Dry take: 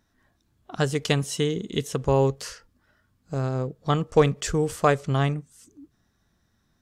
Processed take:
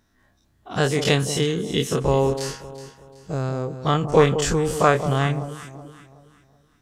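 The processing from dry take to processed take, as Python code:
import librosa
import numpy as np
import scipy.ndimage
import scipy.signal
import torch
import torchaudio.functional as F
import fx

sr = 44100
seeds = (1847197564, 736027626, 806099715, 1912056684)

y = fx.spec_dilate(x, sr, span_ms=60)
y = fx.echo_alternate(y, sr, ms=187, hz=970.0, feedback_pct=59, wet_db=-10.0)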